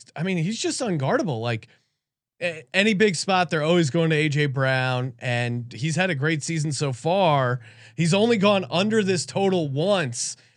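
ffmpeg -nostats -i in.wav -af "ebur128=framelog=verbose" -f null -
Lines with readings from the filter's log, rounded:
Integrated loudness:
  I:         -22.7 LUFS
  Threshold: -32.8 LUFS
Loudness range:
  LRA:         2.3 LU
  Threshold: -42.7 LUFS
  LRA low:   -24.0 LUFS
  LRA high:  -21.7 LUFS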